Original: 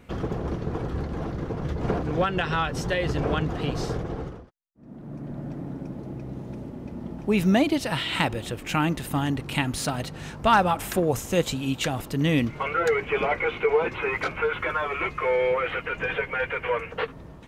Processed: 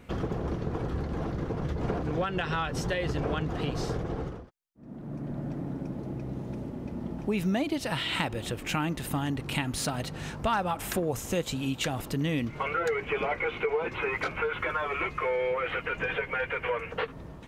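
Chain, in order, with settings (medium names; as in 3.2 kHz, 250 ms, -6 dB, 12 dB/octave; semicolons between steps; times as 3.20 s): compression 2.5:1, threshold -28 dBFS, peak gain reduction 9.5 dB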